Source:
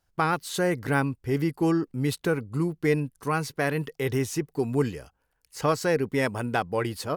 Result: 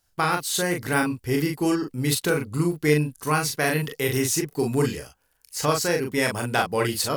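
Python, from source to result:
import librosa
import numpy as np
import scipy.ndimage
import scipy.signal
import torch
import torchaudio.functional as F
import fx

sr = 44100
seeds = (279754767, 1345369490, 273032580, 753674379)

p1 = fx.high_shelf(x, sr, hz=2900.0, db=11.5)
p2 = fx.rider(p1, sr, range_db=10, speed_s=0.5)
y = p2 + fx.room_early_taps(p2, sr, ms=(26, 40), db=(-11.5, -4.0), dry=0)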